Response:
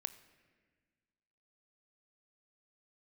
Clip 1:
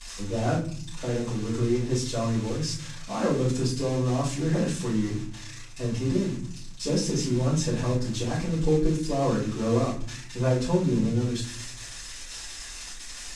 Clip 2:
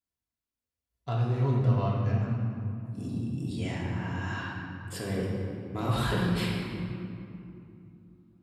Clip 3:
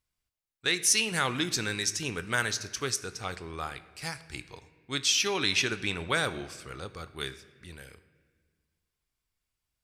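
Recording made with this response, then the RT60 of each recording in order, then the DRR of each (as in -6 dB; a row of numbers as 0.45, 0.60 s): 3; 0.50, 2.8, 1.6 s; -9.5, -5.0, 12.0 dB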